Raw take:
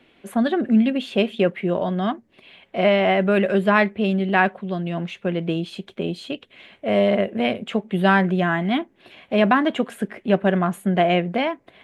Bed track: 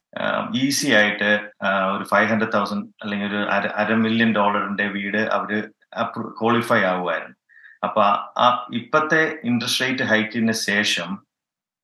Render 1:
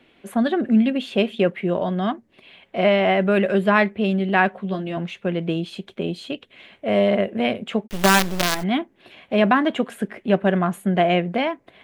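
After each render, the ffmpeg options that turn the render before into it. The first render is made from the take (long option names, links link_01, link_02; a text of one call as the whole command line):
ffmpeg -i in.wav -filter_complex "[0:a]asettb=1/sr,asplit=3[link_01][link_02][link_03];[link_01]atrim=end=4.524[link_04];[link_02]atrim=start=4.52:end=4.97,asetpts=PTS-STARTPTS,afade=type=in:duration=0.004:curve=qsin,afade=type=out:start_time=0.446:duration=0.004:curve=qsin,asplit=2[link_05][link_06];[link_06]adelay=15,volume=-5dB[link_07];[link_05][link_07]amix=inputs=2:normalize=0,atrim=end_sample=19845[link_08];[link_03]atrim=start=4.966[link_09];[link_04][link_08]acrossfade=duration=0.004:curve1=hsin:curve2=qsin[link_10];[link_10][link_09]acrossfade=duration=0.004:curve1=qsin:curve2=hsin,asplit=3[link_11][link_12][link_13];[link_11]afade=type=out:start_time=7.86:duration=0.02[link_14];[link_12]acrusher=bits=3:dc=4:mix=0:aa=0.000001,afade=type=in:start_time=7.86:duration=0.02,afade=type=out:start_time=8.62:duration=0.02[link_15];[link_13]afade=type=in:start_time=8.62:duration=0.02[link_16];[link_14][link_15][link_16]amix=inputs=3:normalize=0" out.wav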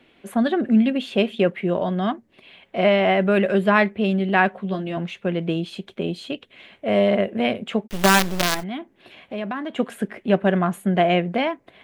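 ffmpeg -i in.wav -filter_complex "[0:a]asettb=1/sr,asplit=3[link_01][link_02][link_03];[link_01]atrim=end=8.604[link_04];[link_02]atrim=start=8.6:end=9.79,asetpts=PTS-STARTPTS,afade=type=in:duration=0.004:curve=qsin,afade=type=out:start_time=1.186:duration=0.004:curve=qsin,acompressor=threshold=-34dB:ratio=2:attack=3.2:release=140:knee=1:detection=peak[link_05];[link_03]atrim=start=9.786[link_06];[link_04][link_05]acrossfade=duration=0.004:curve1=hsin:curve2=qsin[link_07];[link_07][link_06]acrossfade=duration=0.004:curve1=qsin:curve2=hsin" out.wav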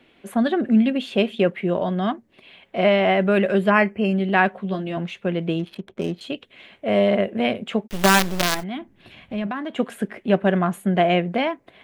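ffmpeg -i in.wav -filter_complex "[0:a]asettb=1/sr,asplit=3[link_01][link_02][link_03];[link_01]atrim=end=3.704[link_04];[link_02]atrim=start=3.7:end=4.16,asetpts=PTS-STARTPTS,afade=type=in:duration=0.004:curve=qsin,afade=type=out:start_time=0.456:duration=0.004:curve=qsin,asuperstop=centerf=3700:order=20:qfactor=3.5[link_05];[link_03]atrim=start=4.156[link_06];[link_04][link_05]acrossfade=duration=0.004:curve1=hsin:curve2=qsin[link_07];[link_07][link_06]acrossfade=duration=0.004:curve1=qsin:curve2=hsin,asettb=1/sr,asplit=3[link_08][link_09][link_10];[link_08]atrim=end=5.594[link_11];[link_09]atrim=start=5.59:end=6.21,asetpts=PTS-STARTPTS,afade=type=in:duration=0.004:curve=qsin,afade=type=out:start_time=0.616:duration=0.004:curve=qsin,adynamicsmooth=sensitivity=5.5:basefreq=910[link_12];[link_10]atrim=start=6.206[link_13];[link_11][link_12]acrossfade=duration=0.004:curve1=hsin:curve2=qsin[link_14];[link_14][link_13]acrossfade=duration=0.004:curve1=qsin:curve2=hsin,asplit=3[link_15][link_16][link_17];[link_15]afade=type=out:start_time=8.75:duration=0.02[link_18];[link_16]asubboost=boost=5.5:cutoff=180,afade=type=in:start_time=8.75:duration=0.02,afade=type=out:start_time=9.46:duration=0.02[link_19];[link_17]afade=type=in:start_time=9.46:duration=0.02[link_20];[link_18][link_19][link_20]amix=inputs=3:normalize=0" out.wav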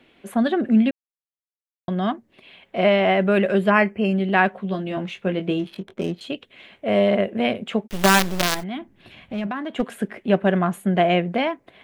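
ffmpeg -i in.wav -filter_complex "[0:a]asettb=1/sr,asplit=3[link_01][link_02][link_03];[link_01]atrim=end=4.894[link_04];[link_02]atrim=start=4.89:end=6.03,asetpts=PTS-STARTPTS,afade=type=in:duration=0.004:curve=qsin,afade=type=out:start_time=1.136:duration=0.004:curve=qsin,asplit=2[link_05][link_06];[link_06]adelay=21,volume=-7.5dB[link_07];[link_05][link_07]amix=inputs=2:normalize=0,atrim=end_sample=50274[link_08];[link_03]atrim=start=6.026[link_09];[link_04][link_08]acrossfade=duration=0.004:curve1=hsin:curve2=qsin[link_10];[link_10][link_09]acrossfade=duration=0.004:curve1=qsin:curve2=hsin,asettb=1/sr,asplit=3[link_11][link_12][link_13];[link_11]atrim=end=8.474[link_14];[link_12]atrim=start=8.47:end=9.92,asetpts=PTS-STARTPTS,afade=type=in:duration=0.004:curve=qsin,afade=type=out:start_time=1.446:duration=0.004:curve=qsin,aeval=exprs='clip(val(0),-1,0.0841)':channel_layout=same[link_15];[link_13]atrim=start=9.916[link_16];[link_14][link_15]acrossfade=duration=0.004:curve1=hsin:curve2=qsin[link_17];[link_17][link_16]acrossfade=duration=0.004:curve1=qsin:curve2=hsin,asplit=3[link_18][link_19][link_20];[link_18]atrim=end=0.91,asetpts=PTS-STARTPTS,afade=type=out:start_time=0.906:duration=0.004:curve=hsin[link_21];[link_19]atrim=start=0.91:end=1.88,asetpts=PTS-STARTPTS,volume=0[link_22];[link_20]atrim=start=1.88,asetpts=PTS-STARTPTS,afade=type=in:duration=0.004:curve=hsin[link_23];[link_21][link_22][link_23]concat=n=3:v=0:a=1" out.wav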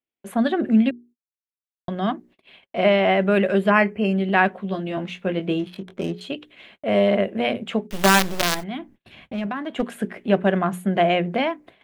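ffmpeg -i in.wav -af "bandreject=frequency=60:width_type=h:width=6,bandreject=frequency=120:width_type=h:width=6,bandreject=frequency=180:width_type=h:width=6,bandreject=frequency=240:width_type=h:width=6,bandreject=frequency=300:width_type=h:width=6,bandreject=frequency=360:width_type=h:width=6,bandreject=frequency=420:width_type=h:width=6,agate=range=-39dB:threshold=-47dB:ratio=16:detection=peak" out.wav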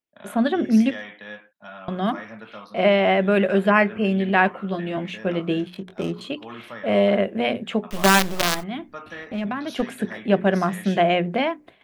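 ffmpeg -i in.wav -i bed.wav -filter_complex "[1:a]volume=-20dB[link_01];[0:a][link_01]amix=inputs=2:normalize=0" out.wav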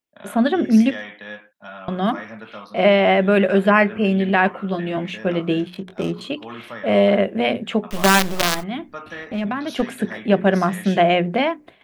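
ffmpeg -i in.wav -af "volume=3dB,alimiter=limit=-3dB:level=0:latency=1" out.wav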